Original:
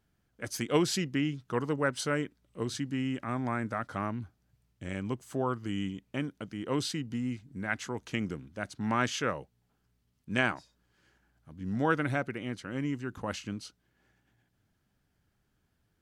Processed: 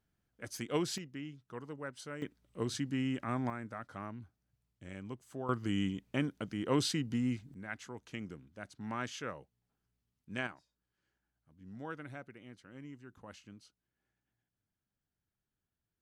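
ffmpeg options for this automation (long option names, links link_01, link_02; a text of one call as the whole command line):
ffmpeg -i in.wav -af "asetnsamples=nb_out_samples=441:pad=0,asendcmd='0.98 volume volume -14dB;2.22 volume volume -2dB;3.5 volume volume -10dB;5.49 volume volume 0.5dB;7.54 volume volume -10dB;10.47 volume volume -16dB',volume=-7dB" out.wav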